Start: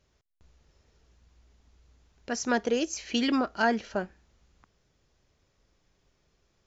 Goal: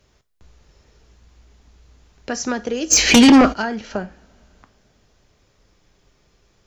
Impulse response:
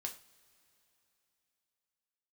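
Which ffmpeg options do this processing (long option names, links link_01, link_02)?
-filter_complex "[0:a]acrossover=split=160[link_01][link_02];[link_02]acompressor=threshold=-32dB:ratio=6[link_03];[link_01][link_03]amix=inputs=2:normalize=0,asplit=2[link_04][link_05];[1:a]atrim=start_sample=2205,asetrate=48510,aresample=44100[link_06];[link_05][link_06]afir=irnorm=-1:irlink=0,volume=0dB[link_07];[link_04][link_07]amix=inputs=2:normalize=0,asplit=3[link_08][link_09][link_10];[link_08]afade=type=out:start_time=2.9:duration=0.02[link_11];[link_09]aeval=exprs='0.251*sin(PI/2*4.47*val(0)/0.251)':channel_layout=same,afade=type=in:start_time=2.9:duration=0.02,afade=type=out:start_time=3.52:duration=0.02[link_12];[link_10]afade=type=in:start_time=3.52:duration=0.02[link_13];[link_11][link_12][link_13]amix=inputs=3:normalize=0,volume=6.5dB"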